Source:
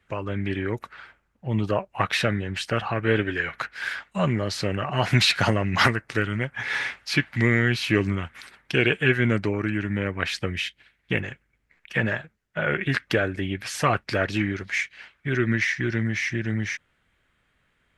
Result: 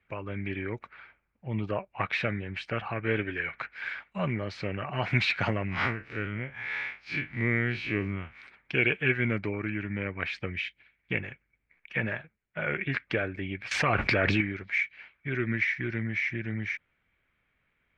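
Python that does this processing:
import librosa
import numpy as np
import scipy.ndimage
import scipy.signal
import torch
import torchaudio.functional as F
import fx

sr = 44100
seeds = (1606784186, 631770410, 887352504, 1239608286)

y = fx.spec_blur(x, sr, span_ms=80.0, at=(5.67, 8.41), fade=0.02)
y = fx.env_flatten(y, sr, amount_pct=100, at=(13.71, 14.41))
y = scipy.signal.sosfilt(scipy.signal.butter(2, 3100.0, 'lowpass', fs=sr, output='sos'), y)
y = fx.peak_eq(y, sr, hz=2300.0, db=10.0, octaves=0.23)
y = y * 10.0 ** (-7.0 / 20.0)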